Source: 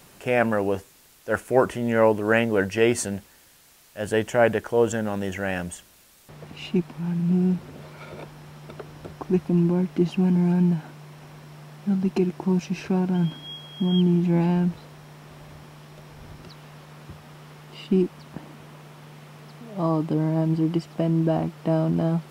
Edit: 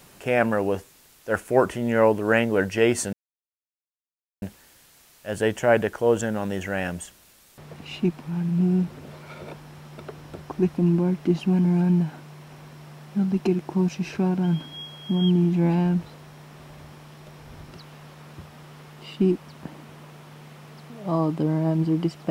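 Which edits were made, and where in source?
0:03.13: splice in silence 1.29 s

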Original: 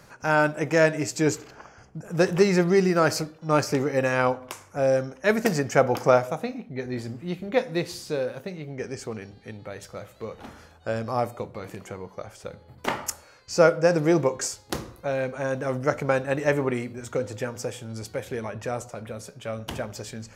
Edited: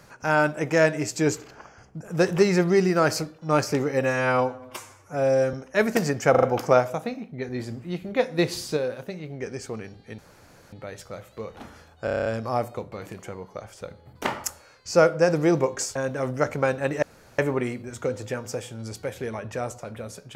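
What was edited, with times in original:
0:04.02–0:05.03: time-stretch 1.5×
0:05.80: stutter 0.04 s, 4 plays
0:07.76–0:08.14: clip gain +4.5 dB
0:09.56: splice in room tone 0.54 s
0:10.88: stutter 0.03 s, 8 plays
0:14.58–0:15.42: remove
0:16.49: splice in room tone 0.36 s

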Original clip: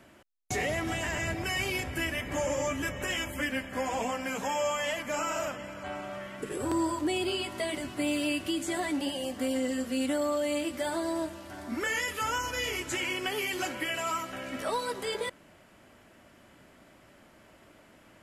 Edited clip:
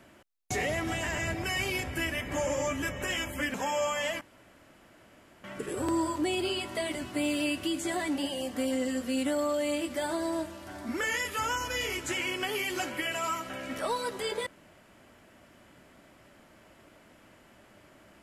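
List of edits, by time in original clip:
0:03.54–0:04.37: remove
0:05.04–0:06.27: fill with room tone

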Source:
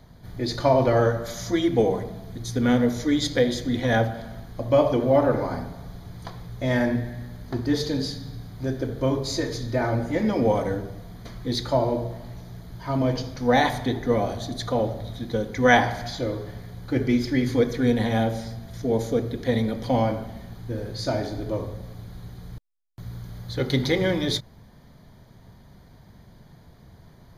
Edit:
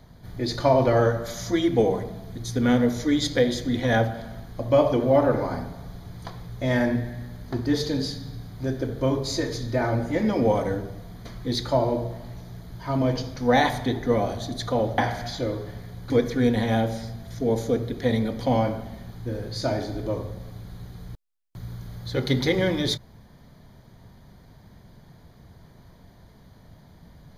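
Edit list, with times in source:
0:14.98–0:15.78: remove
0:16.90–0:17.53: remove

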